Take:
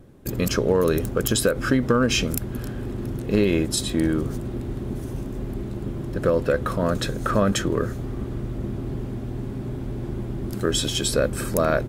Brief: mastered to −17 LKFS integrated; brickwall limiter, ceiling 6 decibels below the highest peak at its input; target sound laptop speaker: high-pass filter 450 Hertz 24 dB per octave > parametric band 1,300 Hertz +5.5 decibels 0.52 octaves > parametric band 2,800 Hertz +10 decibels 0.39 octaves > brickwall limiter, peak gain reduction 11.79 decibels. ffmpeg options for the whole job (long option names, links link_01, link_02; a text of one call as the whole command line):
ffmpeg -i in.wav -af "alimiter=limit=-12.5dB:level=0:latency=1,highpass=frequency=450:width=0.5412,highpass=frequency=450:width=1.3066,equalizer=frequency=1300:width_type=o:width=0.52:gain=5.5,equalizer=frequency=2800:width_type=o:width=0.39:gain=10,volume=16dB,alimiter=limit=-5dB:level=0:latency=1" out.wav